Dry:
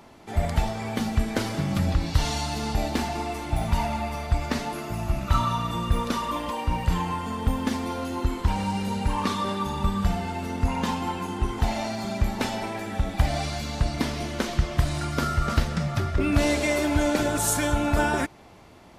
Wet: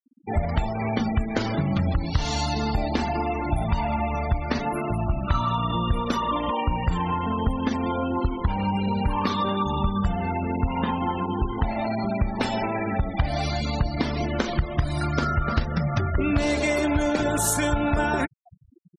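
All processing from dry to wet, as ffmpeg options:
-filter_complex "[0:a]asettb=1/sr,asplit=3[a][b][c];[a]atrim=end=10.354[d];[b]atrim=start=10.35:end=12.21,asetpts=PTS-STARTPTS,afade=t=in:d=0.004:c=qsin,afade=t=out:st=1.856:d=0.004:c=qsin,lowpass=3.8k,tremolo=f=100:d=0.261[e];[c]atrim=start=12.206[f];[d][e]acrossfade=d=0.004:c1=hsin:c2=qsin[g];[g][f]acrossfade=d=0.004:c1=qsin:c2=hsin,afftfilt=real='re*gte(hypot(re,im),0.0224)':imag='im*gte(hypot(re,im),0.0224)':win_size=1024:overlap=0.75,acompressor=threshold=-32dB:ratio=2.5,volume=8.5dB"

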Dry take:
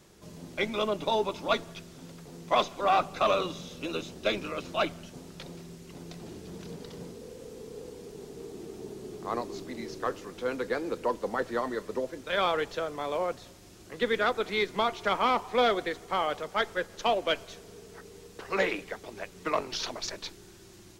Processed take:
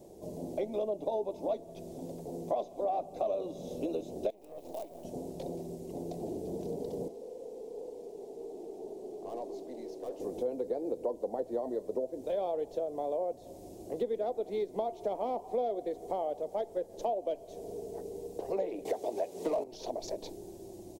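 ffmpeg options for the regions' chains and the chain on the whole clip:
-filter_complex "[0:a]asettb=1/sr,asplit=3[a][b][c];[a]atrim=end=4.304[d];[b]atrim=start=4.3:end=5.05,asetpts=PTS-STARTPTS,afade=t=in:d=0.004:c=qsin,afade=t=out:st=0.746:d=0.004:c=qsin,bass=f=250:g=-13,treble=f=4k:g=-3,acompressor=threshold=-42dB:ratio=6:attack=3.2:release=140:knee=1:detection=peak,acrusher=bits=7:dc=4:mix=0:aa=0.000001[e];[c]atrim=start=5.046[f];[d][e]acrossfade=d=0.004:c1=hsin:c2=qsin[g];[g][f]acrossfade=d=0.004:c1=qsin:c2=hsin,asettb=1/sr,asplit=3[h][i][j];[h]atrim=end=7.084[k];[i]atrim=start=7.08:end=10.2,asetpts=PTS-STARTPTS,afade=t=in:d=0.004:c=qsin,afade=t=out:st=3.116:d=0.004:c=qsin,highpass=f=890:p=1,highshelf=f=6.2k:g=-11,aeval=exprs='(tanh(112*val(0)+0.3)-tanh(0.3))/112':c=same[l];[j]atrim=start=10.196[m];[k][l]acrossfade=d=0.004:c1=hsin:c2=qsin[n];[n][m]acrossfade=d=0.004:c1=qsin:c2=hsin,asettb=1/sr,asplit=3[o][p][q];[o]atrim=end=18.854[r];[p]atrim=start=18.85:end=19.64,asetpts=PTS-STARTPTS,afade=t=in:d=0.004:c=qsin,afade=t=out:st=0.786:d=0.004:c=qsin,highpass=41,asplit=2[s][t];[t]highpass=f=720:p=1,volume=23dB,asoftclip=type=tanh:threshold=-13.5dB[u];[s][u]amix=inputs=2:normalize=0,lowpass=f=7.4k:p=1,volume=-6dB[v];[q]atrim=start=19.636[w];[r][v]acrossfade=d=0.004:c1=hsin:c2=qsin[x];[x][w]acrossfade=d=0.004:c1=qsin:c2=hsin,firequalizer=gain_entry='entry(170,0);entry(270,7);entry(680,13);entry(1300,-18);entry(2200,-8);entry(3700,-1);entry(8400,2)':delay=0.05:min_phase=1,acompressor=threshold=-32dB:ratio=4,equalizer=f=3.8k:w=0.52:g=-9"

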